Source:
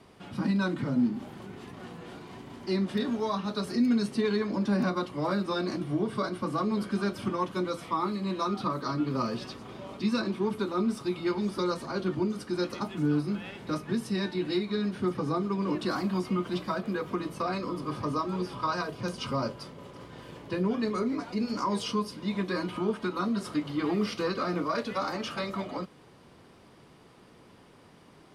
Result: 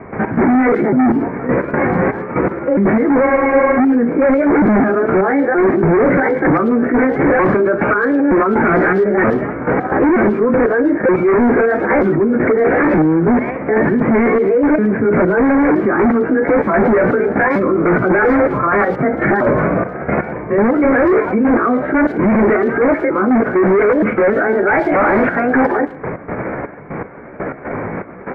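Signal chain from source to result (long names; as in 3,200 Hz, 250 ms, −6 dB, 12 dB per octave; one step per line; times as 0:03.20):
pitch shifter swept by a sawtooth +7 semitones, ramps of 924 ms
dynamic equaliser 380 Hz, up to +4 dB, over −42 dBFS, Q 1.3
in parallel at −1 dB: compressor whose output falls as the input rises −34 dBFS, ratio −1
on the sum: gate pattern ".x.xxx..x.." 121 BPM −12 dB
hard clipping −31 dBFS, distortion −5 dB
Chebyshev low-pass with heavy ripple 2,300 Hz, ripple 3 dB
far-end echo of a speakerphone 110 ms, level −24 dB
on a send at −21 dB: convolution reverb RT60 0.90 s, pre-delay 4 ms
on the sum: boost into a limiter +33.5 dB
frozen spectrum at 0:03.26, 0.52 s
level −6 dB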